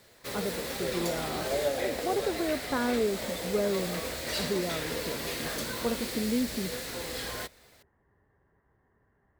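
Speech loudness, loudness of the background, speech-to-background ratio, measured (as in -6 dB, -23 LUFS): -34.0 LUFS, -33.5 LUFS, -0.5 dB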